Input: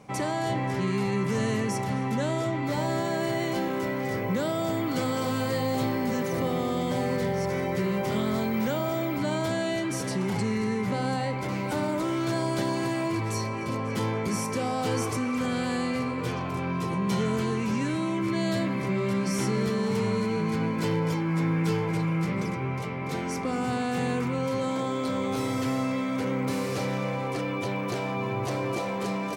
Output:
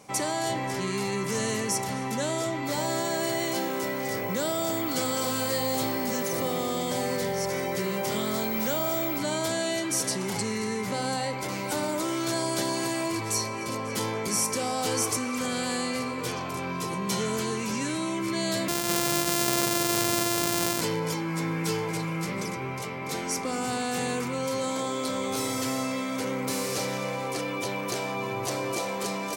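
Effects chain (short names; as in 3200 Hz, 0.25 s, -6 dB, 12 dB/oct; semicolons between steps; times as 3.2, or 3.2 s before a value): 18.68–20.81 sample sorter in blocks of 128 samples; tone controls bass -7 dB, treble +11 dB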